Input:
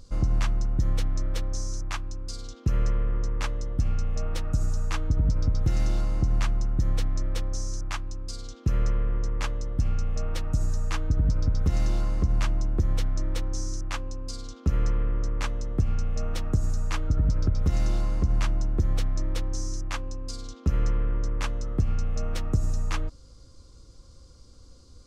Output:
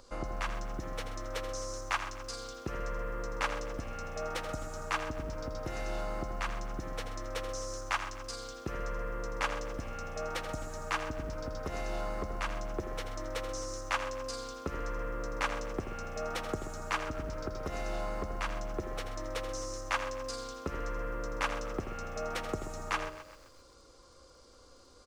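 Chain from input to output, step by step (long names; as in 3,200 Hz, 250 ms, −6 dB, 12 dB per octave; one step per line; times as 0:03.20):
high-shelf EQ 4,600 Hz +7 dB
on a send at −18.5 dB: convolution reverb RT60 0.90 s, pre-delay 5 ms
on the sum: downward compressor, threshold −23 dBFS, peak gain reduction 6 dB
three-way crossover with the lows and the highs turned down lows −20 dB, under 370 Hz, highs −13 dB, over 2,600 Hz
single-tap delay 82 ms −10 dB
feedback echo at a low word length 130 ms, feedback 55%, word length 10 bits, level −13 dB
level +5.5 dB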